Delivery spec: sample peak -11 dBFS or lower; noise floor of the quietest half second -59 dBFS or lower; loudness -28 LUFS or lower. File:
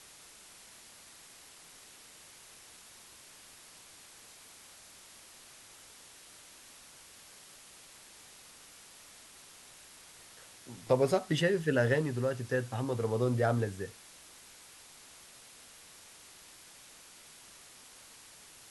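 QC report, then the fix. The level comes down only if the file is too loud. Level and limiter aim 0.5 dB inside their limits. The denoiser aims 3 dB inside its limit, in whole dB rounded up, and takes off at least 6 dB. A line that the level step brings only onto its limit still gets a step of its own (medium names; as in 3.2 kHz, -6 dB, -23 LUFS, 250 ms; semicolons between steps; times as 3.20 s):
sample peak -14.5 dBFS: pass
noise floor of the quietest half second -55 dBFS: fail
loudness -31.0 LUFS: pass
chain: noise reduction 7 dB, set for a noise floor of -55 dBFS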